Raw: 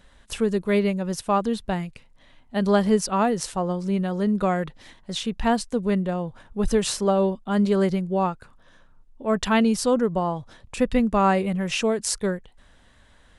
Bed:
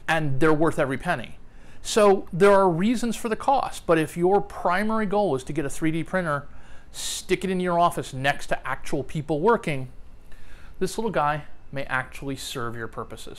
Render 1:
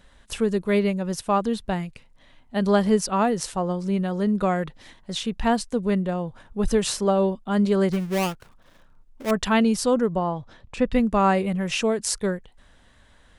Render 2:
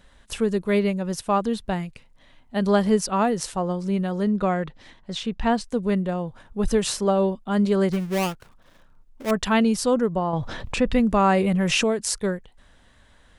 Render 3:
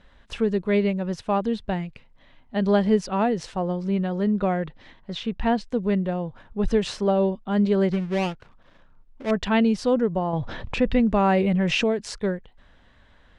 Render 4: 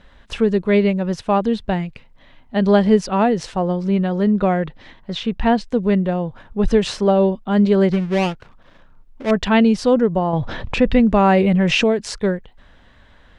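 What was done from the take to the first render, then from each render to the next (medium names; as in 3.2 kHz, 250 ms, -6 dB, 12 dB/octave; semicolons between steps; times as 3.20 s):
7.92–9.31 s: dead-time distortion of 0.29 ms; 10.16–10.93 s: distance through air 87 m
4.28–5.64 s: distance through air 62 m; 10.33–11.84 s: level flattener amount 50%
low-pass 3.8 kHz 12 dB/octave; dynamic bell 1.2 kHz, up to -6 dB, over -40 dBFS, Q 2.4
trim +6 dB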